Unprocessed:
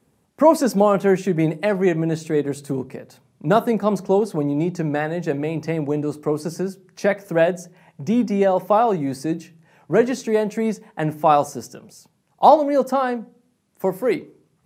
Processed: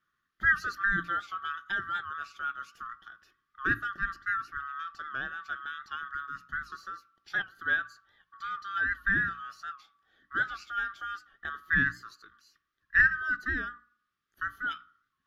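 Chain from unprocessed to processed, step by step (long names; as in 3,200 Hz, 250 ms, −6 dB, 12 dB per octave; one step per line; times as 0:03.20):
neighbouring bands swapped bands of 1,000 Hz
moving average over 5 samples
flat-topped bell 790 Hz −12 dB
mains-hum notches 60/120/180/240/300 Hz
wrong playback speed 25 fps video run at 24 fps
wow of a warped record 78 rpm, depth 100 cents
level −9 dB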